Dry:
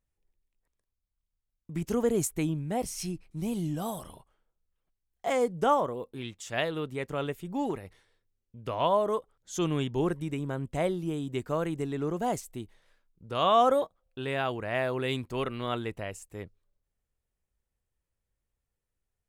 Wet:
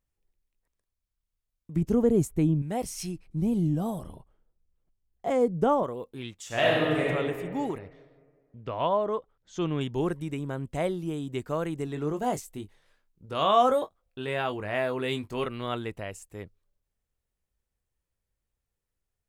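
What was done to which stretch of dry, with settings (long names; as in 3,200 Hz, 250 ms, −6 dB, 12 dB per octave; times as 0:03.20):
0:01.76–0:02.62: tilt shelving filter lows +8 dB, about 690 Hz
0:03.27–0:05.83: tilt shelving filter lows +7.5 dB, about 730 Hz
0:06.46–0:07.07: thrown reverb, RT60 2 s, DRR −6.5 dB
0:07.78–0:09.81: high-frequency loss of the air 150 metres
0:11.85–0:15.46: double-tracking delay 20 ms −8 dB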